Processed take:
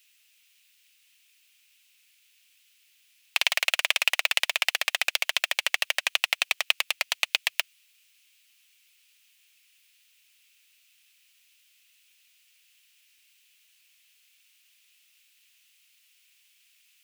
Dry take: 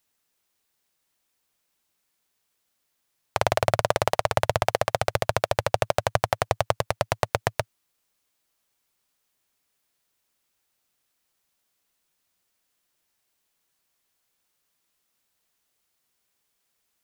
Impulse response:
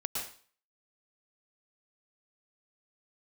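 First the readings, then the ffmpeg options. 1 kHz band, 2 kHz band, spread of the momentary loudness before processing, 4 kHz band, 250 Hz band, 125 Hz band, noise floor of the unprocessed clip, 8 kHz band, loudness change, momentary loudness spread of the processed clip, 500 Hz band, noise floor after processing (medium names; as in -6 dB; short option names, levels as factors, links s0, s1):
-12.0 dB, +6.5 dB, 4 LU, +9.5 dB, under -25 dB, under -40 dB, -76 dBFS, +4.0 dB, +1.0 dB, 4 LU, -18.5 dB, -64 dBFS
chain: -af "aeval=exprs='0.841*(cos(1*acos(clip(val(0)/0.841,-1,1)))-cos(1*PI/2))+0.376*(cos(5*acos(clip(val(0)/0.841,-1,1)))-cos(5*PI/2))':c=same,highpass=f=2600:t=q:w=3.5"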